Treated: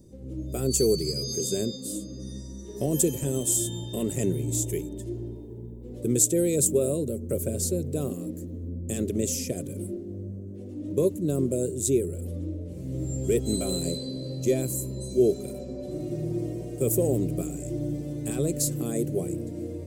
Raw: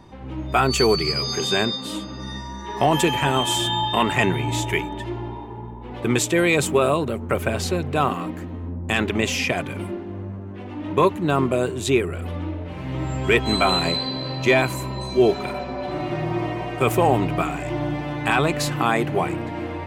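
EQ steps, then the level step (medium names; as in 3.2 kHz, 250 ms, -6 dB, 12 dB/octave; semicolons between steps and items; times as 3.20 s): FFT filter 540 Hz 0 dB, 860 Hz -28 dB, 2.9 kHz -19 dB, 7.7 kHz +10 dB; -4.0 dB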